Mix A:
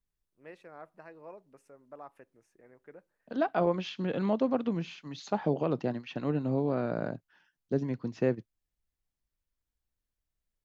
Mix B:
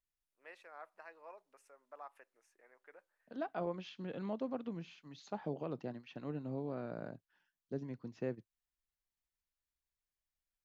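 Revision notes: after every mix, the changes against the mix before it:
first voice: add high-pass 790 Hz 12 dB/octave; second voice -11.5 dB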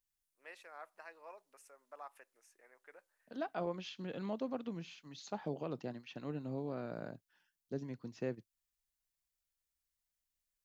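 master: add treble shelf 4.1 kHz +11 dB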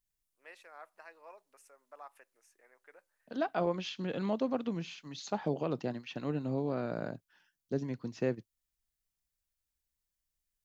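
second voice +7.0 dB

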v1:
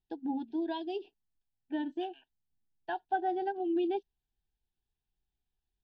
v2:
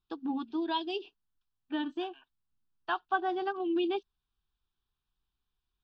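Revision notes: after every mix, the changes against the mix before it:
first voice: add resonant high shelf 1.9 kHz +7.5 dB, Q 1.5; master: remove Chebyshev band-stop 810–1800 Hz, order 2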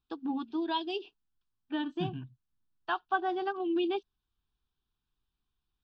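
second voice: remove high-pass 660 Hz 24 dB/octave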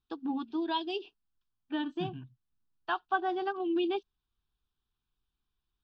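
second voice -3.5 dB

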